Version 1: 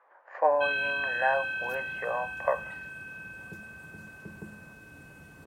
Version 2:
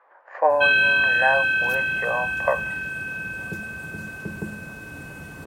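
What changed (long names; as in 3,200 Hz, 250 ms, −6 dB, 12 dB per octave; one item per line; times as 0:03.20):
speech +5.0 dB
background +12.0 dB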